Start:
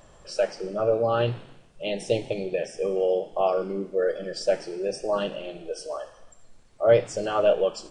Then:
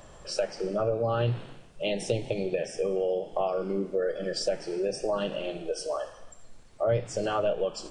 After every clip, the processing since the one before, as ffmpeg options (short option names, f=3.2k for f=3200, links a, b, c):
-filter_complex "[0:a]acrossover=split=160[a][b];[b]acompressor=threshold=-29dB:ratio=4[c];[a][c]amix=inputs=2:normalize=0,volume=3dB"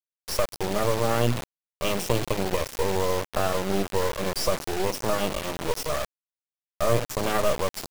-af "acrusher=bits=3:dc=4:mix=0:aa=0.000001,volume=6.5dB"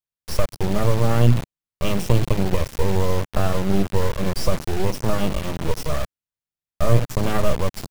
-af "bass=f=250:g=12,treble=f=4k:g=-2"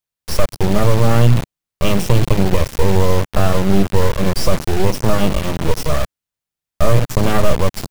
-af "apsyclip=8dB,volume=-1.5dB"